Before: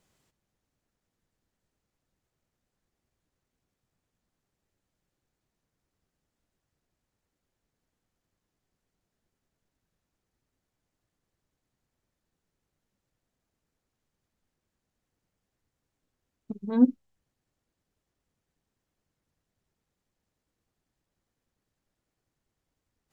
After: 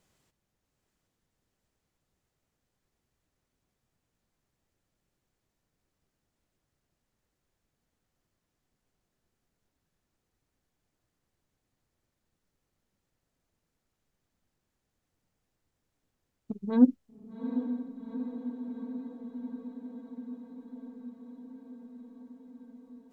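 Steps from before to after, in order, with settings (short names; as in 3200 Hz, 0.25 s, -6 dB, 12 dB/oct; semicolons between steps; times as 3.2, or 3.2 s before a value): diffused feedback echo 0.797 s, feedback 75%, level -9 dB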